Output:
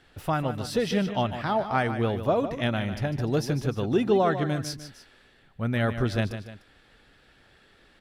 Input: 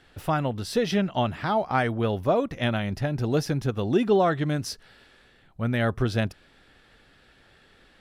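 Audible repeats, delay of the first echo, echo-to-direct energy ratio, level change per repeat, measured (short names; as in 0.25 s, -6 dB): 2, 0.15 s, -9.5 dB, -6.5 dB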